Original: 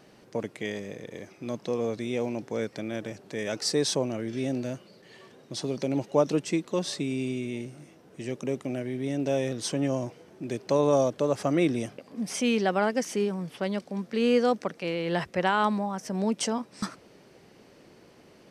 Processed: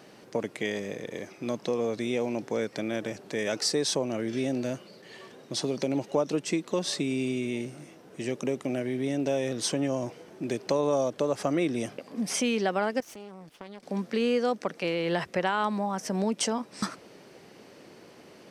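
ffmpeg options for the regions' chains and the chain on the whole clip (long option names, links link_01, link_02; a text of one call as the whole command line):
ffmpeg -i in.wav -filter_complex "[0:a]asettb=1/sr,asplit=3[link_01][link_02][link_03];[link_01]atrim=end=13.004[link_04];[link_02]atrim=start=13:end=13.83,asetpts=PTS-STARTPTS,afade=type=in:duration=0.004:curve=qsin,afade=type=out:start_time=0.826:duration=0.004:curve=qsin,agate=range=-10dB:threshold=-40dB:ratio=16:release=100:detection=peak,acompressor=threshold=-41dB:ratio=6:attack=3.2:release=140:knee=1:detection=peak,aeval=exprs='max(val(0),0)':channel_layout=same[link_05];[link_03]atrim=start=13.826[link_06];[link_04][link_05]acrossfade=duration=0.004:curve1=hsin:curve2=qsin[link_07];[link_07][link_06]acrossfade=duration=0.004:curve1=qsin:curve2=hsin,highpass=frequency=170:poles=1,acompressor=threshold=-30dB:ratio=2.5,volume=4.5dB" out.wav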